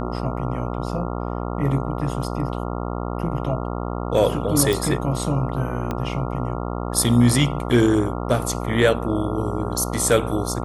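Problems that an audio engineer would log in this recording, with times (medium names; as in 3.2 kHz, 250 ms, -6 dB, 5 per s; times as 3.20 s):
buzz 60 Hz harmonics 23 -27 dBFS
4.73 s: pop
5.91 s: pop -13 dBFS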